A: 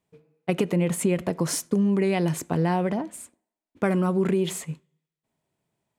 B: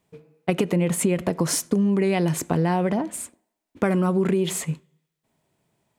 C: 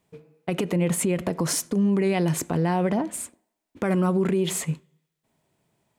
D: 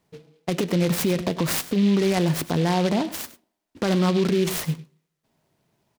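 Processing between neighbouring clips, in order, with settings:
downward compressor 2 to 1, threshold −31 dBFS, peak gain reduction 7.5 dB; level +8 dB
brickwall limiter −15 dBFS, peak gain reduction 7.5 dB
single-tap delay 100 ms −16.5 dB; short delay modulated by noise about 2,900 Hz, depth 0.065 ms; level +1.5 dB

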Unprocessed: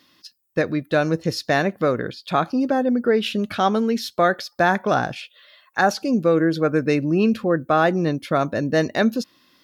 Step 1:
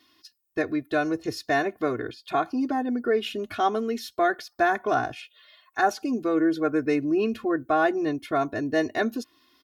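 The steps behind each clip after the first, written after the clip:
comb filter 2.8 ms, depth 100%
dynamic equaliser 4,500 Hz, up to −5 dB, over −40 dBFS, Q 1.4
level −7.5 dB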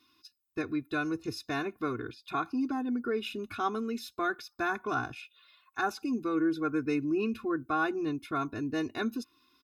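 comb filter 0.8 ms, depth 70%
level −7 dB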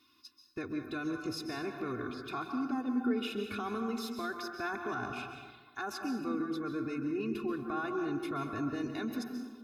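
brickwall limiter −29.5 dBFS, peak gain reduction 10 dB
dense smooth reverb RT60 1.4 s, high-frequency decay 0.45×, pre-delay 120 ms, DRR 4.5 dB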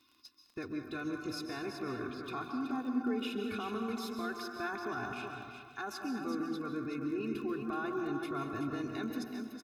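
surface crackle 22 per second −46 dBFS
single-tap delay 375 ms −7.5 dB
level −2 dB

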